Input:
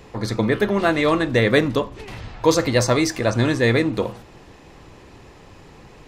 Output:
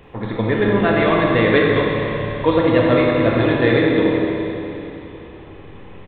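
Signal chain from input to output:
bucket-brigade delay 84 ms, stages 1,024, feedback 74%, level −9 dB
downsampling to 8,000 Hz
four-comb reverb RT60 3.2 s, combs from 28 ms, DRR −1.5 dB
level −1 dB

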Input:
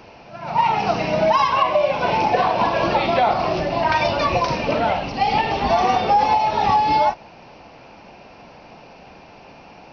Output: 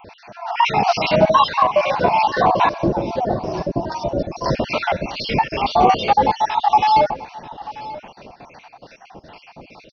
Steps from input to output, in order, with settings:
time-frequency cells dropped at random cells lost 48%
0:02.69–0:04.46: drawn EQ curve 430 Hz 0 dB, 2,000 Hz −24 dB, 3,800 Hz −18 dB, 5,500 Hz −5 dB
two-band tremolo in antiphase 2.4 Hz, depth 70%, crossover 890 Hz
0:00.66–0:01.16: high-shelf EQ 3,900 Hz +10 dB
single-tap delay 937 ms −17.5 dB
level +8 dB

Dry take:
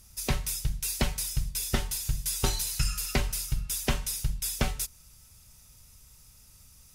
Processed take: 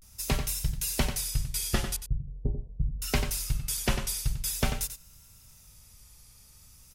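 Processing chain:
0:01.95–0:03.03: Gaussian smoothing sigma 20 samples
slap from a distant wall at 16 metres, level −8 dB
pitch vibrato 0.44 Hz 87 cents

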